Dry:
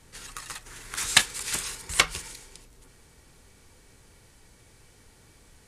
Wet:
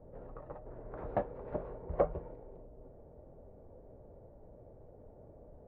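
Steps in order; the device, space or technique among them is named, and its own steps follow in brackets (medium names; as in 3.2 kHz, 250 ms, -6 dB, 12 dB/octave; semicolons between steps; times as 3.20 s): overdriven synthesiser ladder filter (saturation -12 dBFS, distortion -9 dB; four-pole ladder low-pass 660 Hz, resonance 70%); trim +12 dB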